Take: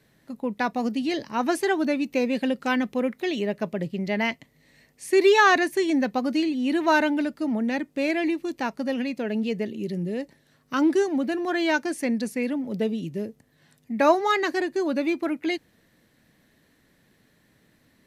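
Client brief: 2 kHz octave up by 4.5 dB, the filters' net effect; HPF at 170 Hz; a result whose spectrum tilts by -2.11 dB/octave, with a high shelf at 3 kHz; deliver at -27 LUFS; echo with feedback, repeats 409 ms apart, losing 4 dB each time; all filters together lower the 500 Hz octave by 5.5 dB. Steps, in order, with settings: high-pass 170 Hz; peaking EQ 500 Hz -8 dB; peaking EQ 2 kHz +8 dB; treble shelf 3 kHz -5.5 dB; feedback delay 409 ms, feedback 63%, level -4 dB; trim -3.5 dB

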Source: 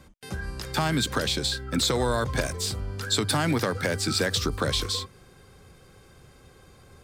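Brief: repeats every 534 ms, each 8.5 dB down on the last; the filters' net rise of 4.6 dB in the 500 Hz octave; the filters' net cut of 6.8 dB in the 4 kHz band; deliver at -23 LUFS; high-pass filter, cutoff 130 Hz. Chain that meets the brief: high-pass 130 Hz; peaking EQ 500 Hz +5.5 dB; peaking EQ 4 kHz -8 dB; feedback delay 534 ms, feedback 38%, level -8.5 dB; trim +3 dB

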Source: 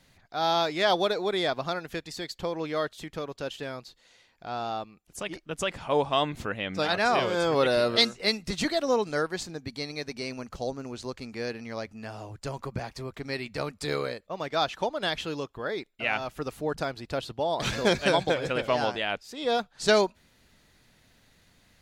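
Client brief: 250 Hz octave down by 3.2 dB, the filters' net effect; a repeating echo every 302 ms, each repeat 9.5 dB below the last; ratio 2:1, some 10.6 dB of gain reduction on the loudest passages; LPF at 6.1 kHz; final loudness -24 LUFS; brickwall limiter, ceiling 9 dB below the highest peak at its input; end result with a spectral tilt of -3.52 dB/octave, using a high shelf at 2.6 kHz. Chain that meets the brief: low-pass 6.1 kHz; peaking EQ 250 Hz -4.5 dB; treble shelf 2.6 kHz +6 dB; compression 2:1, threshold -33 dBFS; peak limiter -22.5 dBFS; feedback delay 302 ms, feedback 33%, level -9.5 dB; trim +11 dB

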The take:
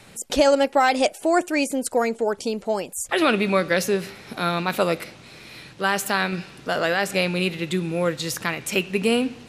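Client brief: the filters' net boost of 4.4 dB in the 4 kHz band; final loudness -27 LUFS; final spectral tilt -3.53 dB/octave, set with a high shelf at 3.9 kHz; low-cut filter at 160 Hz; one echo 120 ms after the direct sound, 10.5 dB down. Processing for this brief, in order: high-pass 160 Hz; treble shelf 3.9 kHz -4 dB; peaking EQ 4 kHz +8 dB; delay 120 ms -10.5 dB; trim -5 dB

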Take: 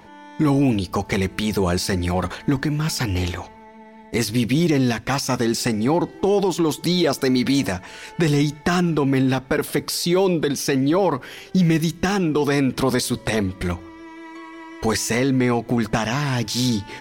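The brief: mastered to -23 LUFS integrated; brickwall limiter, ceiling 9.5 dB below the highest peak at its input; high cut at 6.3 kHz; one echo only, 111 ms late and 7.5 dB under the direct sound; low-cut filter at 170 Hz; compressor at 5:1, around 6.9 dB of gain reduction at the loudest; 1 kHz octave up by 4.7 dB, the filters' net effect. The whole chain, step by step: high-pass 170 Hz; low-pass 6.3 kHz; peaking EQ 1 kHz +6 dB; compression 5:1, threshold -21 dBFS; peak limiter -17.5 dBFS; delay 111 ms -7.5 dB; trim +4.5 dB

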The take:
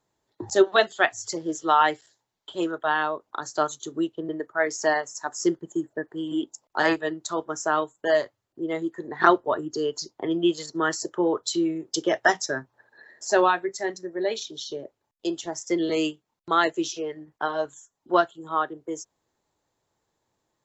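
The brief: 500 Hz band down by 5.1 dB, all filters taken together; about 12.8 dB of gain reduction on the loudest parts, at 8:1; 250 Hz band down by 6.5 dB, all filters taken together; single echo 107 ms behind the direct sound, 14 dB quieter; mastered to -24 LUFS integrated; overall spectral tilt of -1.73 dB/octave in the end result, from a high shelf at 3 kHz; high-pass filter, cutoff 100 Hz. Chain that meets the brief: high-pass 100 Hz; peaking EQ 250 Hz -7.5 dB; peaking EQ 500 Hz -5 dB; treble shelf 3 kHz +5 dB; compression 8:1, threshold -27 dBFS; delay 107 ms -14 dB; trim +9 dB

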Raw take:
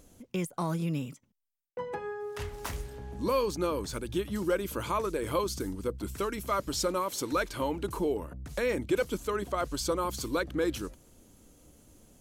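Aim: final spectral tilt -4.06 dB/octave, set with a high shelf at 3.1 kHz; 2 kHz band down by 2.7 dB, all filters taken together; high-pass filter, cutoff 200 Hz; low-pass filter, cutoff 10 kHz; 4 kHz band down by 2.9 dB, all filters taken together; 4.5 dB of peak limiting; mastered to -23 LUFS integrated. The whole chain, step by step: high-pass 200 Hz; low-pass 10 kHz; peaking EQ 2 kHz -4 dB; treble shelf 3.1 kHz +6 dB; peaking EQ 4 kHz -8 dB; trim +11.5 dB; peak limiter -11 dBFS

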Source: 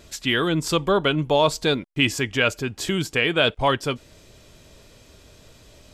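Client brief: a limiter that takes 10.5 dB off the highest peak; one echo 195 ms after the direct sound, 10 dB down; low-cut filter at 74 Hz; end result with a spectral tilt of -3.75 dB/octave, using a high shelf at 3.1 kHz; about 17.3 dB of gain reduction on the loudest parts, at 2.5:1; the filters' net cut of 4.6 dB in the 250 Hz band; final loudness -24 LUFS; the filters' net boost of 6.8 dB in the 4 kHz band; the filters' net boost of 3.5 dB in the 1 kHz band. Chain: high-pass 74 Hz; peaking EQ 250 Hz -7 dB; peaking EQ 1 kHz +3.5 dB; treble shelf 3.1 kHz +7 dB; peaking EQ 4 kHz +4 dB; compression 2.5:1, threshold -39 dBFS; peak limiter -27 dBFS; delay 195 ms -10 dB; trim +14.5 dB

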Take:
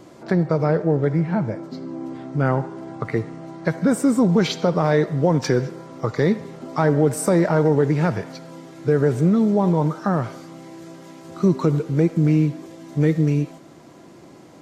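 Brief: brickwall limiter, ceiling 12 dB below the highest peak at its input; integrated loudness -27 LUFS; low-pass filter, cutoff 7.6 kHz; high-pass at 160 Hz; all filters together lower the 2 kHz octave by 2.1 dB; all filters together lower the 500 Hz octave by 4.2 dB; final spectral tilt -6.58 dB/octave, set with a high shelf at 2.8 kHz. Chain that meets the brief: high-pass 160 Hz; low-pass 7.6 kHz; peaking EQ 500 Hz -5 dB; peaking EQ 2 kHz -4 dB; treble shelf 2.8 kHz +4.5 dB; trim +3.5 dB; peak limiter -17 dBFS

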